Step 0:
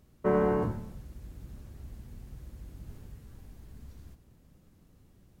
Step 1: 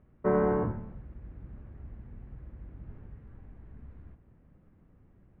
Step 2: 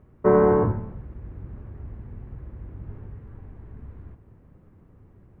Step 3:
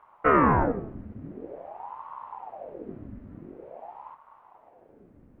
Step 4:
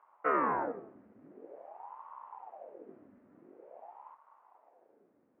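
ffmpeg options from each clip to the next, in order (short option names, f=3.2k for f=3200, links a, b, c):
-af "lowpass=f=2.1k:w=0.5412,lowpass=f=2.1k:w=1.3066"
-af "equalizer=f=100:t=o:w=0.67:g=6,equalizer=f=400:t=o:w=0.67:g=5,equalizer=f=1k:t=o:w=0.67:g=4,volume=5dB"
-af "aeval=exprs='val(0)*sin(2*PI*580*n/s+580*0.75/0.47*sin(2*PI*0.47*n/s))':c=same"
-af "highpass=370,lowpass=2.3k,volume=-8dB"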